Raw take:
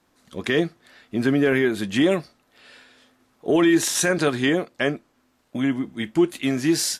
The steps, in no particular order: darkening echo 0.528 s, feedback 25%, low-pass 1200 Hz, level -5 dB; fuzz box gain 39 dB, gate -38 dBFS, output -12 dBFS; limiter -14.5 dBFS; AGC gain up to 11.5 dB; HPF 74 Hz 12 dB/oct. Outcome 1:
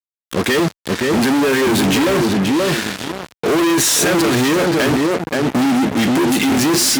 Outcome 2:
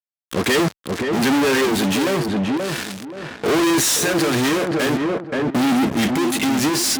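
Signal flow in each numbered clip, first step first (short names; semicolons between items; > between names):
AGC > limiter > darkening echo > fuzz box > HPF; AGC > fuzz box > darkening echo > limiter > HPF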